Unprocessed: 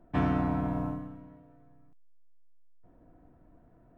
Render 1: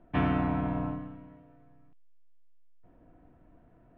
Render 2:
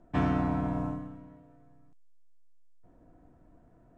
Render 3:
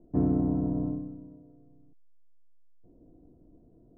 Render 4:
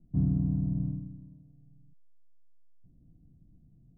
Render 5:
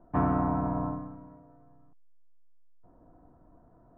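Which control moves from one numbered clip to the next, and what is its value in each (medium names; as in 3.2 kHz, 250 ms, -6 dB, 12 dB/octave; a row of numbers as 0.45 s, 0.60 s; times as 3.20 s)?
resonant low-pass, frequency: 2.9 kHz, 7.7 kHz, 400 Hz, 160 Hz, 1.1 kHz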